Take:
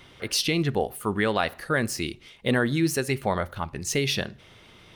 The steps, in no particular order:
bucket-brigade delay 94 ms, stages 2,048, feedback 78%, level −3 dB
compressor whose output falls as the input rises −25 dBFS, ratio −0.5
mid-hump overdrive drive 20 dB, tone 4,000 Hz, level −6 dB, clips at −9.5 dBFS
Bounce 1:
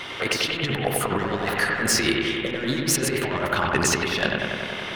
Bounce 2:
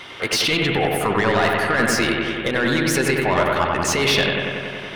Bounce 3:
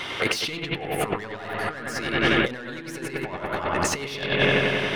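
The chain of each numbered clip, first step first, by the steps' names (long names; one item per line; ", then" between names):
mid-hump overdrive, then compressor whose output falls as the input rises, then bucket-brigade delay
compressor whose output falls as the input rises, then mid-hump overdrive, then bucket-brigade delay
mid-hump overdrive, then bucket-brigade delay, then compressor whose output falls as the input rises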